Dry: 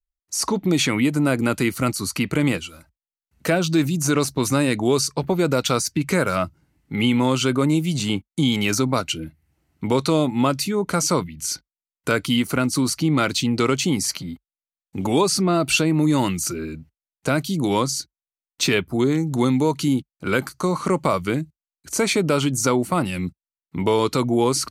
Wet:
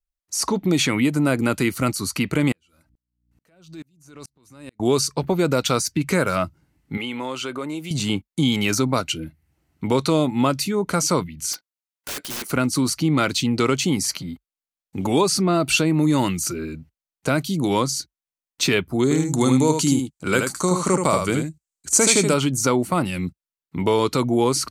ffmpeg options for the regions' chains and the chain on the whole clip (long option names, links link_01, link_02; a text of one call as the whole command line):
ffmpeg -i in.wav -filter_complex "[0:a]asettb=1/sr,asplit=3[link_01][link_02][link_03];[link_01]atrim=end=2.524[link_04];[link_02]atrim=start=2.52:end=4.8,asetpts=PTS-STARTPTS,afade=type=in:duration=0.004:curve=qsin,afade=type=out:start_time=2.276:duration=0.004:curve=qsin,acompressor=threshold=-33dB:ratio=4:attack=3.2:release=140:knee=1:detection=peak,aeval=exprs='val(0)+0.00141*(sin(2*PI*60*n/s)+sin(2*PI*2*60*n/s)/2+sin(2*PI*3*60*n/s)/3+sin(2*PI*4*60*n/s)/4+sin(2*PI*5*60*n/s)/5)':channel_layout=same,aeval=exprs='val(0)*pow(10,-36*if(lt(mod(-2.3*n/s,1),2*abs(-2.3)/1000),1-mod(-2.3*n/s,1)/(2*abs(-2.3)/1000),(mod(-2.3*n/s,1)-2*abs(-2.3)/1000)/(1-2*abs(-2.3)/1000))/20)':channel_layout=same[link_05];[link_03]atrim=start=4.796[link_06];[link_04][link_05]acrossfade=duration=0.004:curve1=hsin:curve2=qsin[link_07];[link_07][link_06]acrossfade=duration=0.004:curve1=qsin:curve2=hsin,asettb=1/sr,asplit=3[link_08][link_09][link_10];[link_08]atrim=end=6.974[link_11];[link_09]atrim=start=6.97:end=7.91,asetpts=PTS-STARTPTS,afade=type=in:duration=0.004:curve=qsin,afade=type=out:start_time=0.936:duration=0.004:curve=qsin,bass=frequency=250:gain=-15,treble=frequency=4000:gain=-5,acompressor=threshold=-28dB:ratio=2:attack=3.2:release=140:knee=1:detection=peak[link_12];[link_10]atrim=start=7.906[link_13];[link_11][link_12]acrossfade=duration=0.004:curve1=hsin:curve2=qsin[link_14];[link_14][link_13]acrossfade=duration=0.004:curve1=qsin:curve2=hsin,asettb=1/sr,asplit=3[link_15][link_16][link_17];[link_15]atrim=end=11.534[link_18];[link_16]atrim=start=11.53:end=12.51,asetpts=PTS-STARTPTS,afade=type=in:duration=0.004:curve=qsin,afade=type=out:start_time=0.976:duration=0.004:curve=qsin,highpass=490,aeval=exprs='(mod(16.8*val(0)+1,2)-1)/16.8':channel_layout=same[link_19];[link_17]atrim=start=12.506[link_20];[link_18][link_19]acrossfade=duration=0.004:curve1=hsin:curve2=qsin[link_21];[link_21][link_20]acrossfade=duration=0.004:curve1=qsin:curve2=hsin,asettb=1/sr,asplit=3[link_22][link_23][link_24];[link_22]atrim=end=19.034[link_25];[link_23]atrim=start=19.03:end=22.34,asetpts=PTS-STARTPTS,afade=type=in:duration=0.004:curve=qsin,afade=type=out:start_time=3.306:duration=0.004:curve=qsin,equalizer=frequency=7600:width_type=o:width=0.77:gain=13.5,aecho=1:1:77:0.531,atrim=end_sample=145971[link_26];[link_24]atrim=start=22.336[link_27];[link_25][link_26]acrossfade=duration=0.004:curve1=hsin:curve2=qsin[link_28];[link_28][link_27]acrossfade=duration=0.004:curve1=qsin:curve2=hsin" out.wav